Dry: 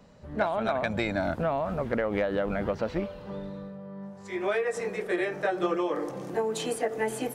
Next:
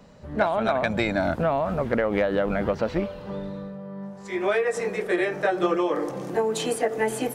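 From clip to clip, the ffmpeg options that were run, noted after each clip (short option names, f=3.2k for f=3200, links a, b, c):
-af "bandreject=f=50:t=h:w=6,bandreject=f=100:t=h:w=6,volume=4.5dB"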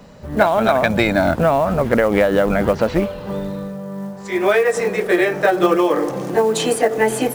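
-af "acrusher=bits=7:mode=log:mix=0:aa=0.000001,volume=8dB"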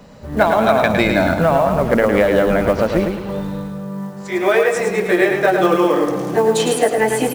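-af "aecho=1:1:108|216|324|432|540:0.531|0.218|0.0892|0.0366|0.015"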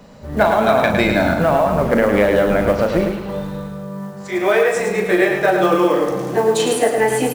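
-filter_complex "[0:a]asplit=2[a][b];[b]adelay=39,volume=-8dB[c];[a][c]amix=inputs=2:normalize=0,volume=-1dB"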